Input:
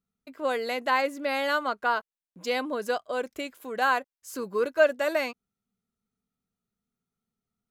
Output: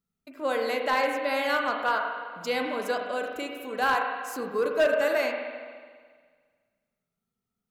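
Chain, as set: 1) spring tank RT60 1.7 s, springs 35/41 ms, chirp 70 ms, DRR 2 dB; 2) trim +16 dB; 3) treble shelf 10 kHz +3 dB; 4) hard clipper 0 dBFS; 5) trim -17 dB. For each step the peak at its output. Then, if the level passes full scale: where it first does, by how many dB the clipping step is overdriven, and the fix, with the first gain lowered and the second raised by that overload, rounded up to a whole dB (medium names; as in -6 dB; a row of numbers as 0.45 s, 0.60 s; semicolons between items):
-7.5 dBFS, +8.5 dBFS, +8.5 dBFS, 0.0 dBFS, -17.0 dBFS; step 2, 8.5 dB; step 2 +7 dB, step 5 -8 dB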